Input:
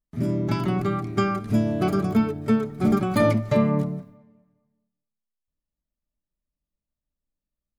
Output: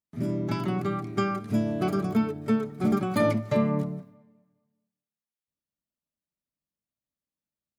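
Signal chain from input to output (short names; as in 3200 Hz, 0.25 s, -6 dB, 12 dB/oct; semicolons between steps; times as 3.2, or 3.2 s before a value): HPF 110 Hz 12 dB/oct; gain -3.5 dB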